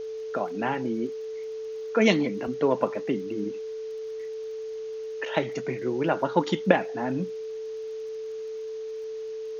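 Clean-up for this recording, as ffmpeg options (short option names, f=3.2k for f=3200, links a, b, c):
-af "adeclick=t=4,bandreject=f=440:w=30,afwtdn=0.0022"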